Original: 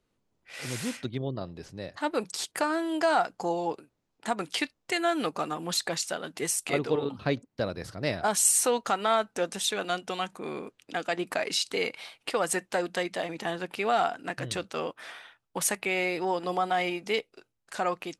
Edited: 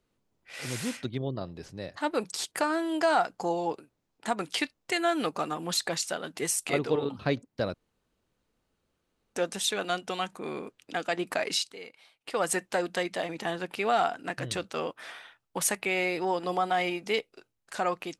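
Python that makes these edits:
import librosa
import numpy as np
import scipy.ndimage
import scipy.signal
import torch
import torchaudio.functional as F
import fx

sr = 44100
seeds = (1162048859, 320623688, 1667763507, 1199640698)

y = fx.edit(x, sr, fx.room_tone_fill(start_s=7.74, length_s=1.59),
    fx.fade_down_up(start_s=11.57, length_s=0.83, db=-15.0, fade_s=0.16), tone=tone)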